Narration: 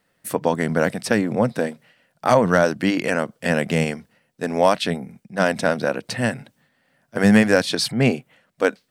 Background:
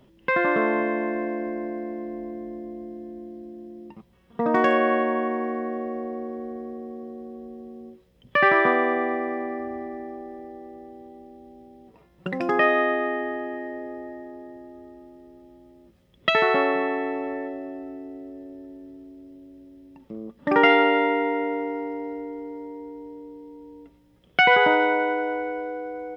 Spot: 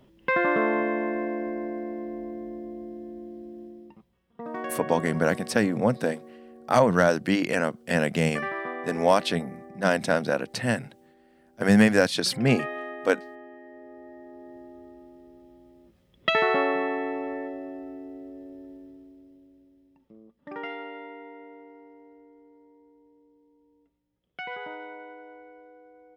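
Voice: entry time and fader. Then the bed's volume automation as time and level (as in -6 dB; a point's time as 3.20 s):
4.45 s, -3.5 dB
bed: 3.63 s -1.5 dB
4.31 s -14 dB
13.62 s -14 dB
14.58 s -2.5 dB
18.72 s -2.5 dB
20.72 s -20 dB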